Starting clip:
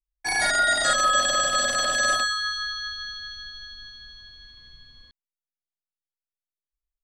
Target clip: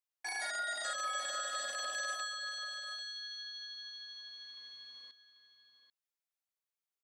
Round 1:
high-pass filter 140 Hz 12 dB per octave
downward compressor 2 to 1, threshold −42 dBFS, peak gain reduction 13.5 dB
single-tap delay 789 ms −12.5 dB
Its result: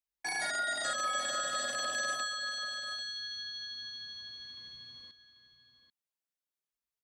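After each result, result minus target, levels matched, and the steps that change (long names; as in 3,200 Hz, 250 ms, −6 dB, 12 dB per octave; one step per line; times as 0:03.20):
125 Hz band +18.5 dB; downward compressor: peak gain reduction −4 dB
change: high-pass filter 510 Hz 12 dB per octave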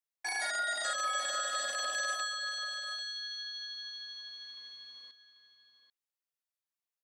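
downward compressor: peak gain reduction −4 dB
change: downward compressor 2 to 1, threshold −50 dBFS, peak gain reduction 17.5 dB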